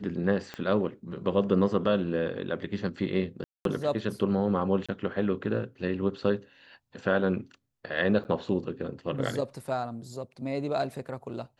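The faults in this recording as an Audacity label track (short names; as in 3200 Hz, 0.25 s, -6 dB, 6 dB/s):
0.540000	0.540000	pop -22 dBFS
3.440000	3.650000	gap 0.212 s
4.860000	4.890000	gap 26 ms
8.240000	8.250000	gap 9.3 ms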